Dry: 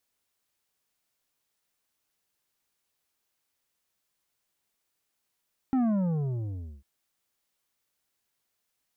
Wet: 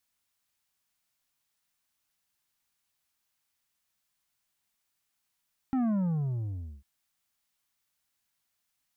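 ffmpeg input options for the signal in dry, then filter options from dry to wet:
-f lavfi -i "aevalsrc='0.0708*clip((1.1-t)/1.03,0,1)*tanh(2.66*sin(2*PI*270*1.1/log(65/270)*(exp(log(65/270)*t/1.1)-1)))/tanh(2.66)':d=1.1:s=44100"
-af "equalizer=f=440:t=o:w=0.99:g=-9.5"

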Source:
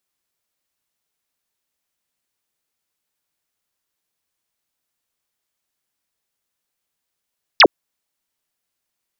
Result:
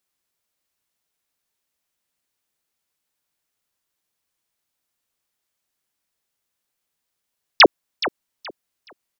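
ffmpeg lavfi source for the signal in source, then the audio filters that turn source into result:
-f lavfi -i "aevalsrc='0.596*clip(t/0.002,0,1)*clip((0.06-t)/0.002,0,1)*sin(2*PI*5900*0.06/log(270/5900)*(exp(log(270/5900)*t/0.06)-1))':d=0.06:s=44100"
-af "aecho=1:1:423|846|1269:0.2|0.0479|0.0115"

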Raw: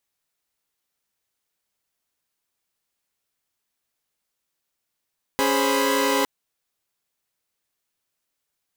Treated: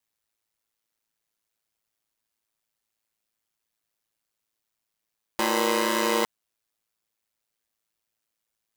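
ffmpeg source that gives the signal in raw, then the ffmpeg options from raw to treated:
-f lavfi -i "aevalsrc='0.0794*((2*mod(277.18*t,1)-1)+(2*mod(415.3*t,1)-1)+(2*mod(523.25*t,1)-1)+(2*mod(987.77*t,1)-1))':d=0.86:s=44100"
-af "aeval=exprs='val(0)*sin(2*PI*55*n/s)':c=same"

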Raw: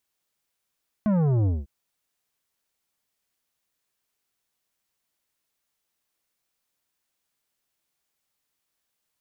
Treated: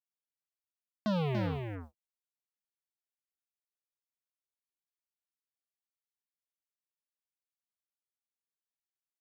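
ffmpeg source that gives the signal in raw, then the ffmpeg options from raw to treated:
-f lavfi -i "aevalsrc='0.1*clip((0.6-t)/0.2,0,1)*tanh(3.55*sin(2*PI*220*0.6/log(65/220)*(exp(log(65/220)*t/0.6)-1)))/tanh(3.55)':d=0.6:s=44100"
-filter_complex "[0:a]aeval=exprs='0.106*(cos(1*acos(clip(val(0)/0.106,-1,1)))-cos(1*PI/2))+0.00944*(cos(3*acos(clip(val(0)/0.106,-1,1)))-cos(3*PI/2))+0.000841*(cos(4*acos(clip(val(0)/0.106,-1,1)))-cos(4*PI/2))+0.0119*(cos(7*acos(clip(val(0)/0.106,-1,1)))-cos(7*PI/2))':c=same,highpass=f=490:p=1,asplit=2[a][b];[b]aecho=0:1:287:0.531[c];[a][c]amix=inputs=2:normalize=0"

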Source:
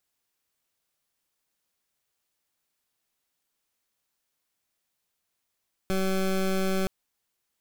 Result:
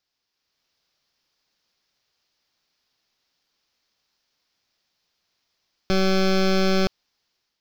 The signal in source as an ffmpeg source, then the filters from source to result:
-f lavfi -i "aevalsrc='0.0531*(2*lt(mod(190*t,1),0.2)-1)':d=0.97:s=44100"
-af "dynaudnorm=f=320:g=3:m=6.5dB,highshelf=f=6.7k:t=q:w=3:g=-10.5"

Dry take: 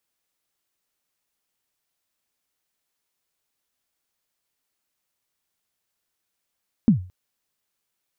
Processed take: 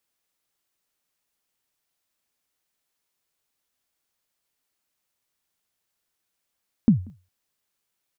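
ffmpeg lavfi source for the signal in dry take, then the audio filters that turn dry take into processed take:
-f lavfi -i "aevalsrc='0.398*pow(10,-3*t/0.36)*sin(2*PI*(250*0.111/log(91/250)*(exp(log(91/250)*min(t,0.111)/0.111)-1)+91*max(t-0.111,0)))':d=0.22:s=44100"
-filter_complex "[0:a]asplit=2[a][b];[b]adelay=186.6,volume=-28dB,highshelf=f=4k:g=-4.2[c];[a][c]amix=inputs=2:normalize=0"

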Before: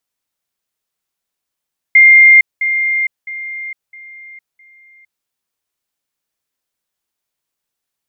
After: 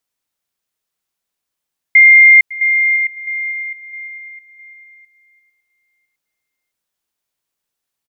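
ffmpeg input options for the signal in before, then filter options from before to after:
-f lavfi -i "aevalsrc='pow(10,(-2.5-10*floor(t/0.66))/20)*sin(2*PI*2110*t)*clip(min(mod(t,0.66),0.46-mod(t,0.66))/0.005,0,1)':d=3.3:s=44100"
-af "aecho=1:1:555|1110|1665:0.1|0.041|0.0168"

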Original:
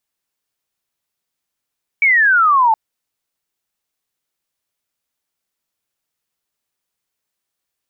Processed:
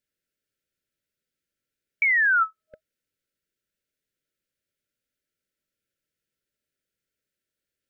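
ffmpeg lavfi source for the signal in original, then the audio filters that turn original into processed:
-f lavfi -i "aevalsrc='0.355*clip(t/0.002,0,1)*clip((0.72-t)/0.002,0,1)*sin(2*PI*2300*0.72/log(860/2300)*(exp(log(860/2300)*t/0.72)-1))':d=0.72:s=44100"
-af "afftfilt=real='re*(1-between(b*sr/4096,630,1300))':imag='im*(1-between(b*sr/4096,630,1300))':win_size=4096:overlap=0.75,highshelf=f=2.3k:g=-9.5,acompressor=threshold=-22dB:ratio=2"

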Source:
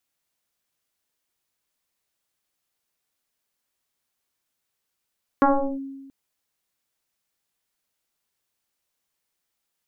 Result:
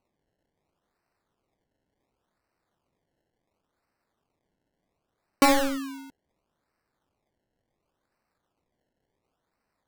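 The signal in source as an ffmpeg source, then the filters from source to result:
-f lavfi -i "aevalsrc='0.251*pow(10,-3*t/1.31)*sin(2*PI*272*t+3.8*clip(1-t/0.37,0,1)*sin(2*PI*1.02*272*t))':d=0.68:s=44100"
-af "acrusher=samples=25:mix=1:aa=0.000001:lfo=1:lforange=25:lforate=0.7"

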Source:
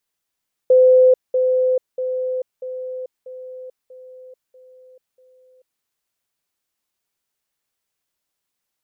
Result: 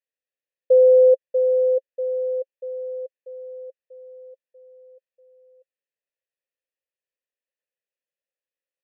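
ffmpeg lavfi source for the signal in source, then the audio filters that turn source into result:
-f lavfi -i "aevalsrc='pow(10,(-8-6*floor(t/0.64))/20)*sin(2*PI*511*t)*clip(min(mod(t,0.64),0.44-mod(t,0.64))/0.005,0,1)':d=5.12:s=44100"
-filter_complex "[0:a]asplit=3[a][b][c];[a]bandpass=f=530:t=q:w=8,volume=0dB[d];[b]bandpass=f=1.84k:t=q:w=8,volume=-6dB[e];[c]bandpass=f=2.48k:t=q:w=8,volume=-9dB[f];[d][e][f]amix=inputs=3:normalize=0"

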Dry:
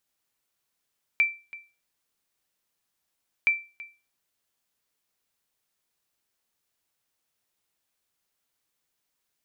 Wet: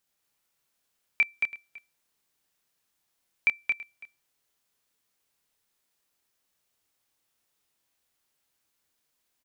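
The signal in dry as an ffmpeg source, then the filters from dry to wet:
-f lavfi -i "aevalsrc='0.2*(sin(2*PI*2340*mod(t,2.27))*exp(-6.91*mod(t,2.27)/0.31)+0.106*sin(2*PI*2340*max(mod(t,2.27)-0.33,0))*exp(-6.91*max(mod(t,2.27)-0.33,0)/0.31))':d=4.54:s=44100"
-filter_complex "[0:a]asplit=2[a][b];[b]adelay=28,volume=-6dB[c];[a][c]amix=inputs=2:normalize=0,aecho=1:1:224:0.631"

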